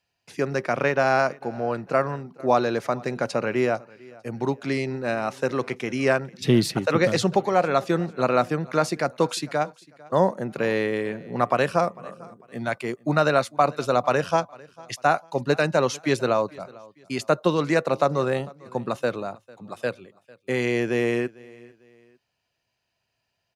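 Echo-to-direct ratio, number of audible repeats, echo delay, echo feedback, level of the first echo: −22.5 dB, 2, 449 ms, 35%, −23.0 dB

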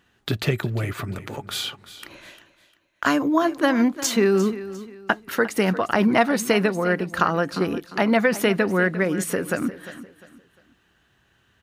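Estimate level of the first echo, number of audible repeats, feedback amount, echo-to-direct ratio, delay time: −15.0 dB, 3, 32%, −14.5 dB, 351 ms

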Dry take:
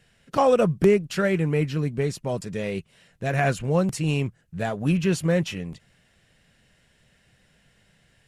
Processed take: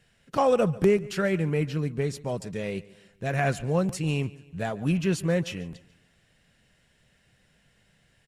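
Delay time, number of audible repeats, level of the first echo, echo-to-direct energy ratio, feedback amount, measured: 143 ms, 3, −20.5 dB, −19.5 dB, 46%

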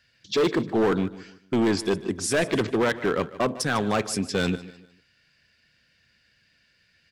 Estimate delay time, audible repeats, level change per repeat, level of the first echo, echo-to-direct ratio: 150 ms, 2, −9.0 dB, −17.0 dB, −16.5 dB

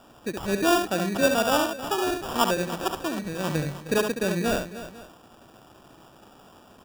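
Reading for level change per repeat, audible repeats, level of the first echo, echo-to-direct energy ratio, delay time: repeats not evenly spaced, 3, −6.0 dB, −5.0 dB, 70 ms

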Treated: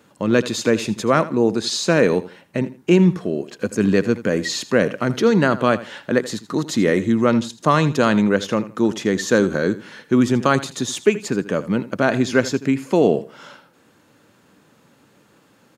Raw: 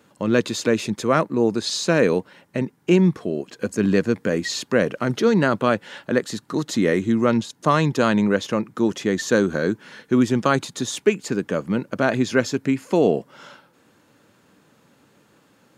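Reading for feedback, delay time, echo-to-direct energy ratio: 24%, 81 ms, −16.0 dB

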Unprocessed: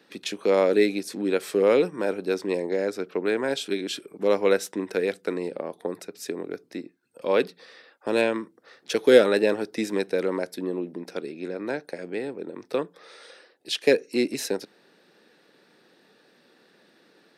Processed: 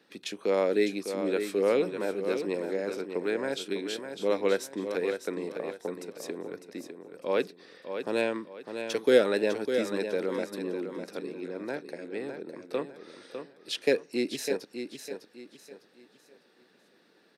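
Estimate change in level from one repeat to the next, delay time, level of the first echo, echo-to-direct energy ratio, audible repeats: −10.0 dB, 603 ms, −8.0 dB, −7.5 dB, 3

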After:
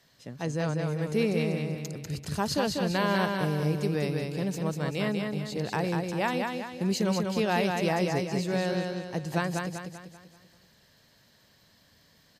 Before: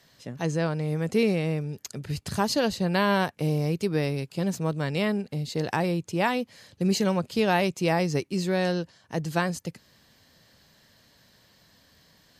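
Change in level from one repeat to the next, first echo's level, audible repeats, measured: −7.0 dB, −4.0 dB, 5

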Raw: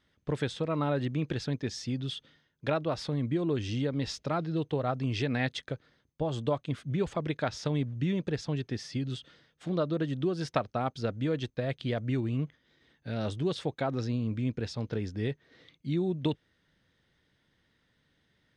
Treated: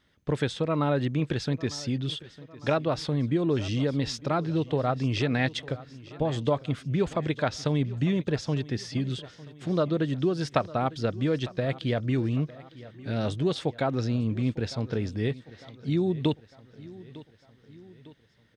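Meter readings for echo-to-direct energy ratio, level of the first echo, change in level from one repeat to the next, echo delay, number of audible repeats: −17.5 dB, −19.0 dB, −5.5 dB, 903 ms, 3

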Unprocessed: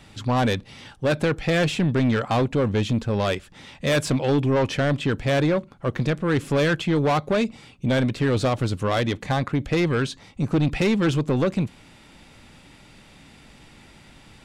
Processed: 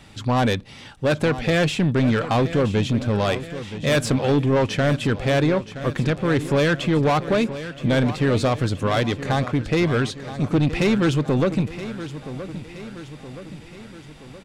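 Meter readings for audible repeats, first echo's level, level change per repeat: 5, −13.0 dB, −5.5 dB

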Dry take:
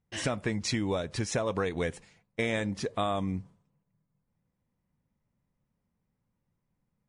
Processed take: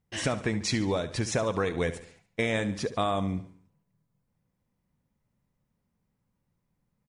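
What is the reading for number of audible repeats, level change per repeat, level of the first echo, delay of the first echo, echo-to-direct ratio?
4, −6.5 dB, −14.0 dB, 71 ms, −13.0 dB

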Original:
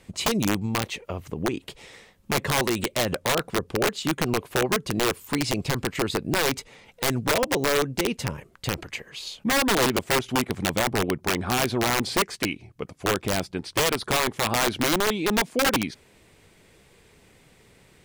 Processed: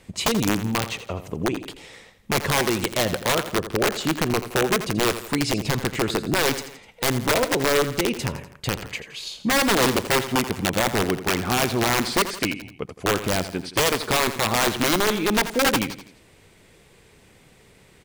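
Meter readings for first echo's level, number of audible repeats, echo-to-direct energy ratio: −12.0 dB, 3, −11.0 dB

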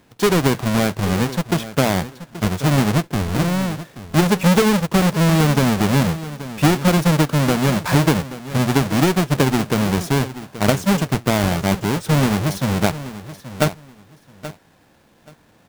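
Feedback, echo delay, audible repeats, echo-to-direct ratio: 20%, 829 ms, 2, −14.5 dB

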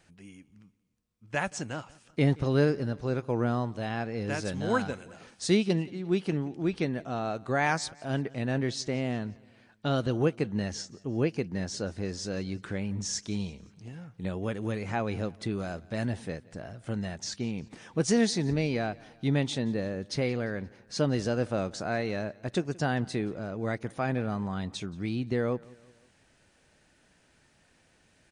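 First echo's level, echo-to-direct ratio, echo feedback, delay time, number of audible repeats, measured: −23.5 dB, −22.5 dB, 49%, 175 ms, 2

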